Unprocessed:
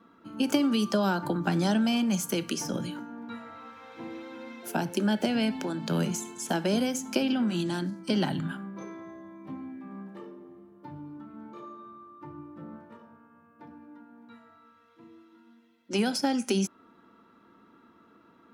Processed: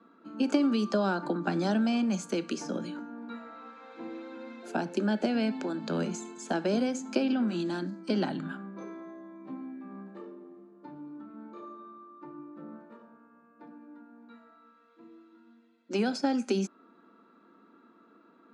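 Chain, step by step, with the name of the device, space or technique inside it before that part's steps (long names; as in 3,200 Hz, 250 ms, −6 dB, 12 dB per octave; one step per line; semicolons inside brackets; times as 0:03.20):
television speaker (loudspeaker in its box 200–6,700 Hz, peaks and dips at 930 Hz −4 dB, 2,000 Hz −5 dB, 3,100 Hz −8 dB, 5,600 Hz −10 dB)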